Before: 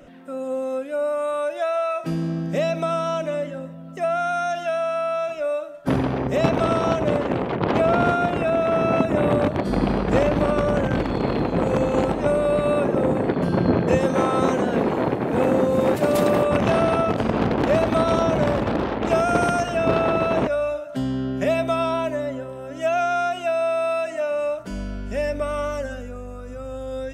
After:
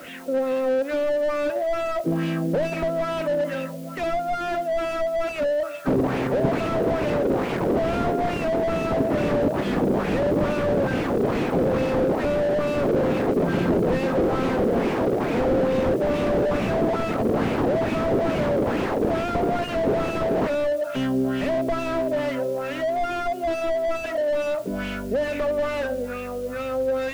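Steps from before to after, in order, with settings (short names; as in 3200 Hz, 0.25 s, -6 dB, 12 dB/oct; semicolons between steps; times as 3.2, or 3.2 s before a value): weighting filter D; in parallel at +2 dB: compressor, threshold -28 dBFS, peak gain reduction 13.5 dB; on the sum: LFO low-pass sine 2.3 Hz 440–2900 Hz; requantised 8-bit, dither triangular; slew limiter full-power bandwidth 71 Hz; gain -2.5 dB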